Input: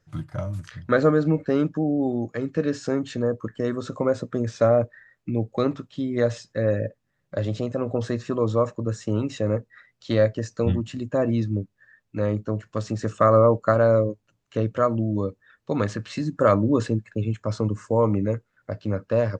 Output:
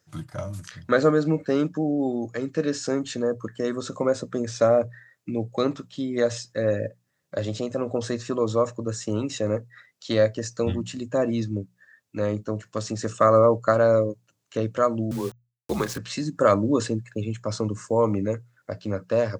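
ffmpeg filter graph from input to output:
-filter_complex "[0:a]asettb=1/sr,asplit=3[s0][s1][s2];[s0]atrim=end=15.114[s3];[s1]atrim=start=15.11:end=15.98,asetpts=PTS-STARTPTS,afade=t=in:d=0.004:c=qsin,afade=t=out:st=0.866:d=0.004:c=qsin,aeval=exprs='val(0)*gte(abs(val(0)),0.0126)':c=same,afreqshift=-83[s4];[s2]atrim=start=15.976[s5];[s3][s4]acrossfade=d=0.004:c1=hsin:c2=qsin[s6];[s6][s5]acrossfade=d=0.004:c1=qsin:c2=hsin,highpass=81,bass=f=250:g=-3,treble=f=4000:g=9,bandreject=f=60:t=h:w=6,bandreject=f=120:t=h:w=6,bandreject=f=180:t=h:w=6"

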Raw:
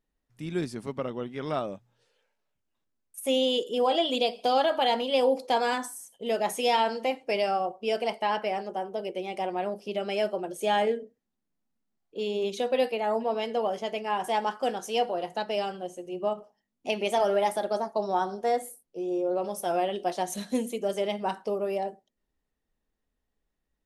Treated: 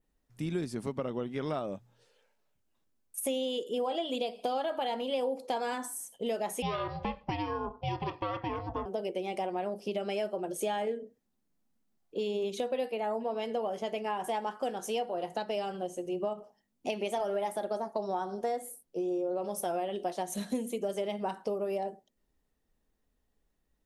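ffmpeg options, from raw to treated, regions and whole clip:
-filter_complex "[0:a]asettb=1/sr,asplit=3[s0][s1][s2];[s0]atrim=end=6.624[s3];[s1]atrim=start=6.62:end=8.86,asetpts=PTS-STARTPTS,afade=t=in:d=0.004:c=qsin,afade=t=out:st=2.236:d=0.004:c=qsin,lowpass=f=4500:w=0.5412,lowpass=f=4500:w=1.3066,aeval=exprs='val(0)*sin(2*PI*310*n/s)':c=same[s4];[s2]atrim=start=8.856[s5];[s3][s4]acrossfade=d=0.004:c1=hsin:c2=qsin[s6];[s6][s5]acrossfade=d=0.004:c1=qsin:c2=hsin,adynamicequalizer=threshold=0.00282:dfrequency=5100:dqfactor=1.6:tfrequency=5100:tqfactor=1.6:attack=5:release=100:ratio=0.375:range=3:mode=cutabove:tftype=bell,acompressor=threshold=0.0178:ratio=4,equalizer=f=2200:w=0.48:g=-3,volume=1.68"

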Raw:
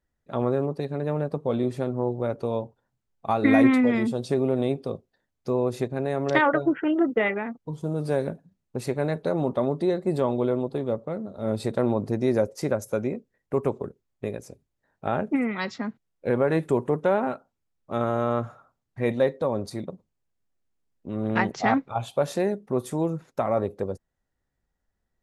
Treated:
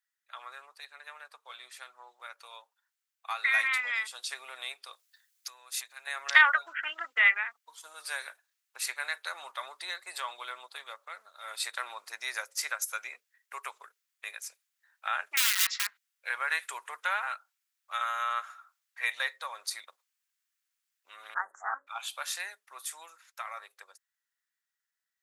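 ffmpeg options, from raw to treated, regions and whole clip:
-filter_complex "[0:a]asettb=1/sr,asplit=3[s0][s1][s2];[s0]atrim=end=4.934[s3];[s1]atrim=start=4.93:end=6.07,asetpts=PTS-STARTPTS,afade=t=in:d=0.004:c=qsin,afade=t=out:st=1.136:d=0.004:c=qsin,highshelf=f=3000:g=11,acompressor=threshold=0.0158:ratio=4:attack=3.2:release=140:knee=1:detection=peak[s4];[s2]atrim=start=6.066[s5];[s3][s4]acrossfade=d=0.004:c1=hsin:c2=qsin[s6];[s6][s5]acrossfade=d=0.004:c1=qsin:c2=hsin,asettb=1/sr,asplit=3[s7][s8][s9];[s7]atrim=end=15.374[s10];[s8]atrim=start=15.37:end=15.87,asetpts=PTS-STARTPTS,afade=t=in:d=0.004:c=qsin,afade=t=out:st=0.496:d=0.004:c=qsin,highpass=f=240:p=1,aeval=exprs='(mod(22.4*val(0)+1,2)-1)/22.4':c=same,equalizer=f=610:t=o:w=1.5:g=-3[s11];[s9]atrim=start=15.866[s12];[s10][s11]acrossfade=d=0.004:c1=hsin:c2=qsin[s13];[s13][s12]acrossfade=d=0.004:c1=qsin:c2=hsin,asettb=1/sr,asplit=3[s14][s15][s16];[s14]atrim=end=21.344[s17];[s15]atrim=start=21.34:end=21.87,asetpts=PTS-STARTPTS,afade=t=in:d=0.004:c=qsin,afade=t=out:st=0.526:d=0.004:c=qsin,asuperstop=centerf=3400:order=12:qfactor=0.6,aemphasis=mode=reproduction:type=75kf,bandreject=f=46.81:t=h:w=4,bandreject=f=93.62:t=h:w=4,bandreject=f=140.43:t=h:w=4,bandreject=f=187.24:t=h:w=4,bandreject=f=234.05:t=h:w=4,bandreject=f=280.86:t=h:w=4,bandreject=f=327.67:t=h:w=4,bandreject=f=374.48:t=h:w=4,bandreject=f=421.29:t=h:w=4,bandreject=f=468.1:t=h:w=4,bandreject=f=514.91:t=h:w=4,bandreject=f=561.72:t=h:w=4,bandreject=f=608.53:t=h:w=4[s18];[s16]atrim=start=21.866[s19];[s17][s18]acrossfade=d=0.004:c1=hsin:c2=qsin[s20];[s20][s19]acrossfade=d=0.004:c1=qsin:c2=hsin,highpass=f=1400:w=0.5412,highpass=f=1400:w=1.3066,highshelf=f=10000:g=5.5,dynaudnorm=f=590:g=13:m=2.24"

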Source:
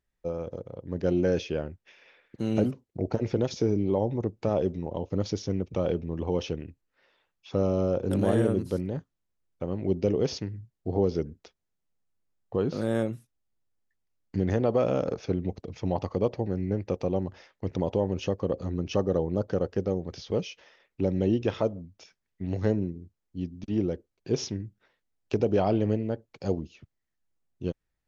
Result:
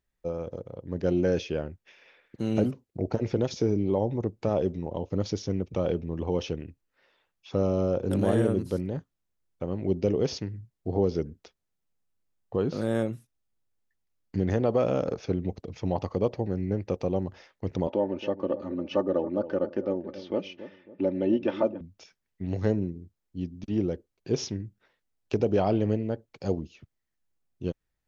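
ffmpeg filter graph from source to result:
-filter_complex "[0:a]asettb=1/sr,asplit=3[s0][s1][s2];[s0]atrim=end=17.874[s3];[s1]atrim=start=17.87:end=21.81,asetpts=PTS-STARTPTS,afade=t=in:d=0.004:c=qsin,afade=t=out:st=3.936:d=0.004:c=qsin,highpass=210,lowpass=2800,aecho=1:1:3.4:0.63,atrim=end_sample=173754,asplit=2[s4][s5];[s5]adelay=275,lowpass=f=800:p=1,volume=0.237,asplit=2[s6][s7];[s7]adelay=275,lowpass=f=800:p=1,volume=0.47,asplit=2[s8][s9];[s9]adelay=275,lowpass=f=800:p=1,volume=0.47,asplit=2[s10][s11];[s11]adelay=275,lowpass=f=800:p=1,volume=0.47,asplit=2[s12][s13];[s13]adelay=275,lowpass=f=800:p=1,volume=0.47[s14];[s4][s6][s8][s10][s12][s14]amix=inputs=6:normalize=0,atrim=end_sample=173754[s15];[s2]atrim=start=21.806[s16];[s3][s15]acrossfade=d=0.004:c1=hsin:c2=qsin[s17];[s17][s16]acrossfade=d=0.004:c1=qsin:c2=hsin"

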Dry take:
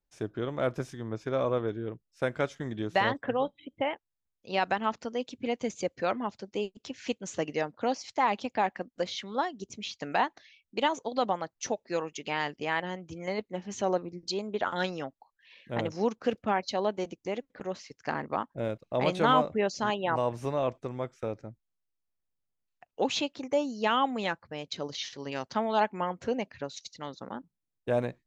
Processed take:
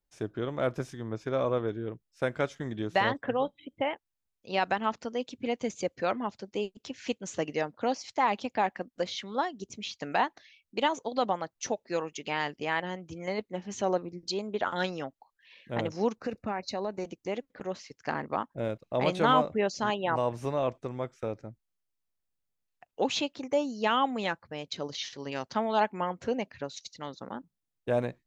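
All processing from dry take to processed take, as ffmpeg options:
-filter_complex "[0:a]asettb=1/sr,asplit=3[s0][s1][s2];[s0]atrim=end=16.174[s3];[s1]atrim=start=16.17:end=17.05,asetpts=PTS-STARTPTS,afade=t=in:d=0.004:c=qsin,afade=t=out:st=0.876:d=0.004:c=qsin,lowshelf=f=90:g=9,acompressor=threshold=0.0316:ratio=2.5:attack=3.2:release=140:knee=1:detection=peak,asuperstop=centerf=3200:order=4:qfactor=4.2[s4];[s2]atrim=start=17.046[s5];[s3][s4]acrossfade=d=0.004:c1=hsin:c2=qsin[s6];[s6][s5]acrossfade=d=0.004:c1=qsin:c2=hsin"

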